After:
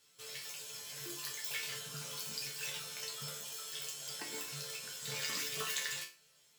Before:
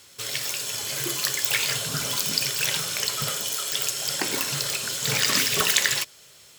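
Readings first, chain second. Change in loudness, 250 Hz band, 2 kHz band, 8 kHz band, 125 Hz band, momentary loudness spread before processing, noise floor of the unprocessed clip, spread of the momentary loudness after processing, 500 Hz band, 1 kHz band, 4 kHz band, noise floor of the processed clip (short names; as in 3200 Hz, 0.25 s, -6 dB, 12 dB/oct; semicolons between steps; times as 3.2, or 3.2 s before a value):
-16.0 dB, -17.5 dB, -16.0 dB, -16.0 dB, -16.5 dB, 7 LU, -51 dBFS, 7 LU, -15.0 dB, -16.5 dB, -16.5 dB, -67 dBFS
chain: resonator bank D3 minor, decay 0.32 s; gain -1.5 dB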